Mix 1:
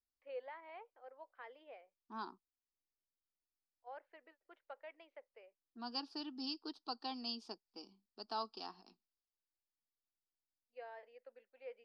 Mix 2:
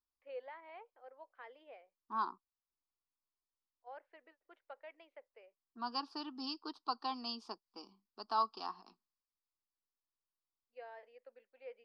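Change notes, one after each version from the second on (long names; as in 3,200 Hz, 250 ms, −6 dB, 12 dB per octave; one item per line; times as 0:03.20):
second voice: add parametric band 1,100 Hz +12.5 dB 0.68 octaves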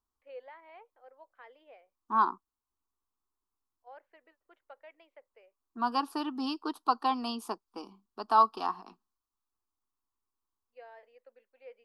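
second voice: remove transistor ladder low-pass 5,400 Hz, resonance 65%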